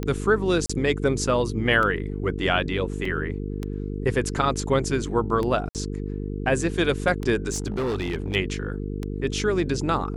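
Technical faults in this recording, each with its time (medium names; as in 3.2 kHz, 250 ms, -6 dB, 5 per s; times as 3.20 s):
buzz 50 Hz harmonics 9 -30 dBFS
tick 33 1/3 rpm -16 dBFS
0.66–0.69 s: dropout 35 ms
3.05 s: dropout 3.7 ms
5.69–5.75 s: dropout 58 ms
7.52–8.36 s: clipped -22.5 dBFS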